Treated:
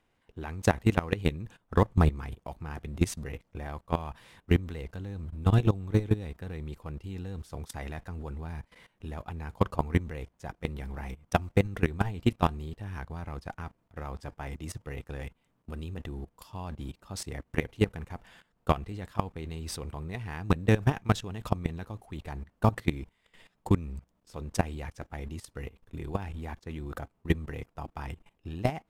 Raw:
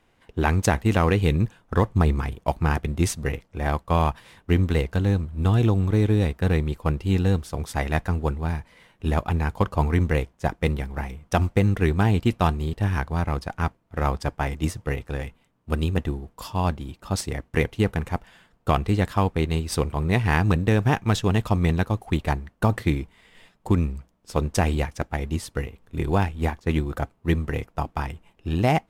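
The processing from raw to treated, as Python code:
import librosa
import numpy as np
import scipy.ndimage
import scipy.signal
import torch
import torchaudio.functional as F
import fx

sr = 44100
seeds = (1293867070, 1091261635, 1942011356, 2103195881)

y = fx.level_steps(x, sr, step_db=18)
y = F.gain(torch.from_numpy(y), -1.0).numpy()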